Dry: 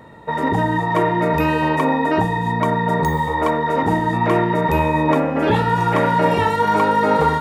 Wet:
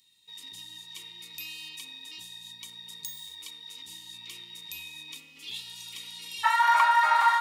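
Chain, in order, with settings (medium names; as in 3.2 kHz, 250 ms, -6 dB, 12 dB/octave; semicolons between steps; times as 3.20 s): inverse Chebyshev high-pass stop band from 1.7 kHz, stop band 40 dB, from 6.43 s stop band from 490 Hz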